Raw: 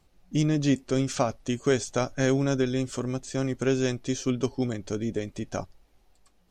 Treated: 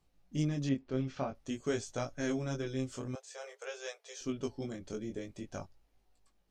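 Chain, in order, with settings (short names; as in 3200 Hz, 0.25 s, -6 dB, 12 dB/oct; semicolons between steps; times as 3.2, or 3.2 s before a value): chorus 0.5 Hz, delay 17.5 ms, depth 5.7 ms; 0.69–1.35 air absorption 230 m; 3.15–4.21 Chebyshev high-pass 420 Hz, order 8; gain -7 dB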